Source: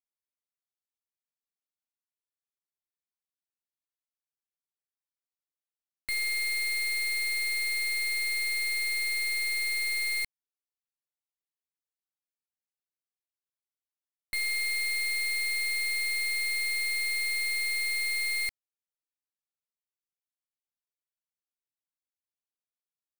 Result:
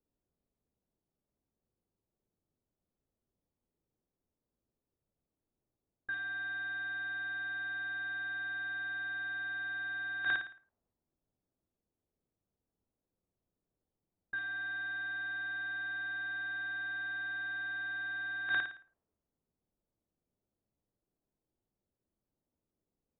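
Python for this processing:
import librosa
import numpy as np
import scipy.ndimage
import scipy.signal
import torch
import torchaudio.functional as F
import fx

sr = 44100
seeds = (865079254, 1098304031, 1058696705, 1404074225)

y = fx.tilt_eq(x, sr, slope=2.5)
y = fx.room_flutter(y, sr, wall_m=9.5, rt60_s=0.46)
y = fx.over_compress(y, sr, threshold_db=-37.0, ratio=-1.0)
y = fx.freq_invert(y, sr, carrier_hz=3700)
y = fx.env_lowpass(y, sr, base_hz=410.0, full_db=-36.5)
y = y * 10.0 ** (5.5 / 20.0)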